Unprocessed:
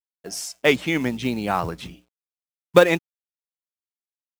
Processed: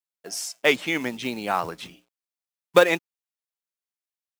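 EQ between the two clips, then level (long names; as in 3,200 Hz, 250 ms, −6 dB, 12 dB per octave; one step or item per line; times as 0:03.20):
high-pass filter 450 Hz 6 dB per octave
0.0 dB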